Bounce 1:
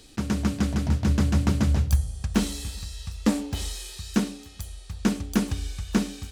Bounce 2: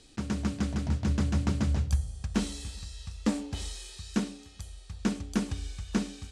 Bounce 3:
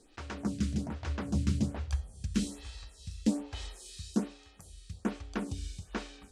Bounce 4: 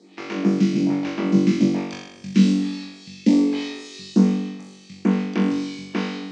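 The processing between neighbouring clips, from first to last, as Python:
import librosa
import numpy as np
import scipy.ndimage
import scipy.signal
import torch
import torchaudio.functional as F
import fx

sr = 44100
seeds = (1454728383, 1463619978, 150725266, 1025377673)

y1 = scipy.signal.sosfilt(scipy.signal.butter(4, 9900.0, 'lowpass', fs=sr, output='sos'), x)
y1 = y1 * 10.0 ** (-5.5 / 20.0)
y2 = fx.stagger_phaser(y1, sr, hz=1.2)
y3 = fx.cabinet(y2, sr, low_hz=180.0, low_slope=24, high_hz=5900.0, hz=(190.0, 340.0, 1500.0, 2200.0), db=(10, 10, -6, 8))
y3 = fx.room_flutter(y3, sr, wall_m=3.6, rt60_s=0.92)
y3 = y3 * 10.0 ** (6.0 / 20.0)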